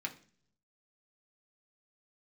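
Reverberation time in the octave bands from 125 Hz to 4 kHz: 1.0, 0.80, 0.55, 0.40, 0.45, 0.50 seconds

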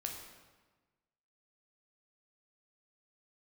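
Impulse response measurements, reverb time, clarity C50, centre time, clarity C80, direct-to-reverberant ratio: 1.3 s, 4.5 dB, 44 ms, 6.0 dB, 1.0 dB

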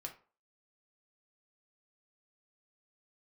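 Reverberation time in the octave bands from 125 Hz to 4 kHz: 0.30, 0.35, 0.40, 0.40, 0.30, 0.25 seconds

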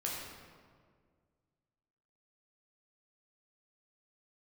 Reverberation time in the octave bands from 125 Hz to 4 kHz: 2.4, 2.2, 2.1, 1.7, 1.4, 1.1 seconds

